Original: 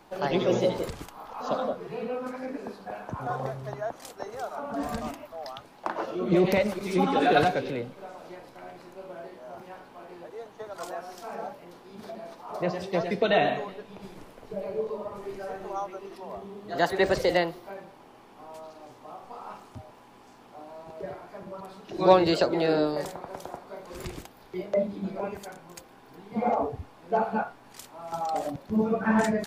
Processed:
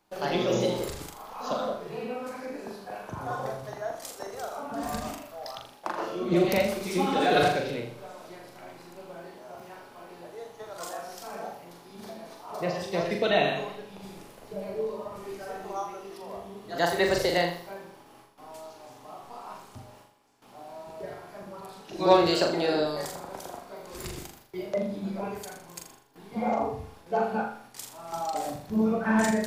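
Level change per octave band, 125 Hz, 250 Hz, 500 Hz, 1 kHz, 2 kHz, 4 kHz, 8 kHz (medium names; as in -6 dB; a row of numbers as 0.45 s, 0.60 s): -1.5 dB, -1.0 dB, -1.0 dB, -1.0 dB, +0.5 dB, +3.0 dB, +6.0 dB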